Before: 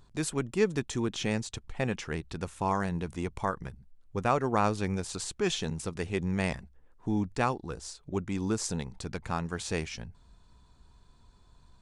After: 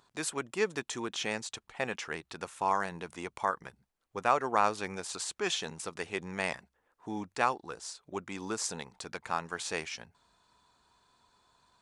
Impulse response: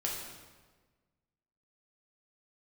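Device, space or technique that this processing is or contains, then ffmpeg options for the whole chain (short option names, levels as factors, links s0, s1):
filter by subtraction: -filter_complex "[0:a]asplit=2[s0][s1];[s1]lowpass=1000,volume=-1[s2];[s0][s2]amix=inputs=2:normalize=0"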